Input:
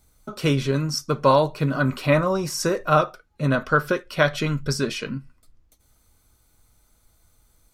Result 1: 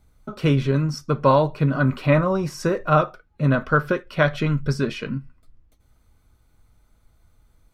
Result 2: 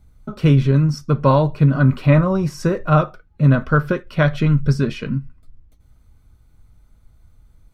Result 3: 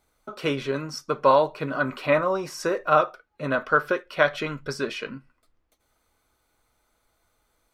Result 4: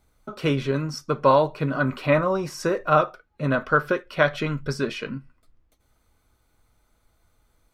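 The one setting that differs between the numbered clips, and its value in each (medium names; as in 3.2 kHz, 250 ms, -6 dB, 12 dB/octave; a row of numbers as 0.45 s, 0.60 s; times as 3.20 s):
tone controls, bass: +4 dB, +12 dB, -14 dB, -4 dB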